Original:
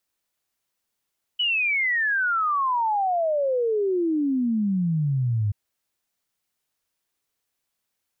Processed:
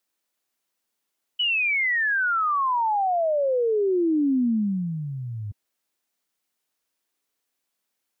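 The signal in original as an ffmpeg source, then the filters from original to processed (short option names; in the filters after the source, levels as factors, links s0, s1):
-f lavfi -i "aevalsrc='0.1*clip(min(t,4.13-t)/0.01,0,1)*sin(2*PI*3000*4.13/log(100/3000)*(exp(log(100/3000)*t/4.13)-1))':d=4.13:s=44100"
-af "lowshelf=f=180:t=q:w=1.5:g=-7"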